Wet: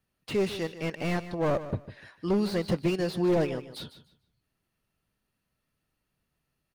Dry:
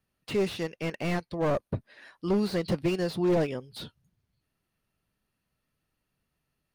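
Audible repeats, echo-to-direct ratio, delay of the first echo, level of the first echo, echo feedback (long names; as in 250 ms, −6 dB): 2, −13.5 dB, 150 ms, −13.5 dB, 22%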